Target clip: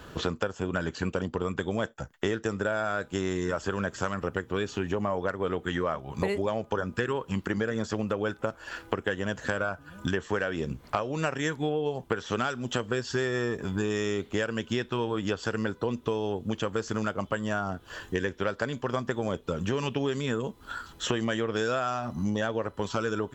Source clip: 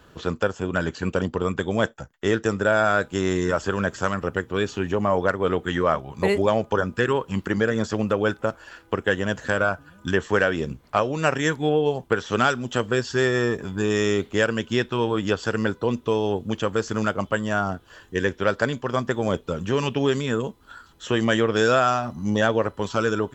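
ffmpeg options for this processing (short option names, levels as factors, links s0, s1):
-af "acompressor=threshold=0.0224:ratio=5,volume=2"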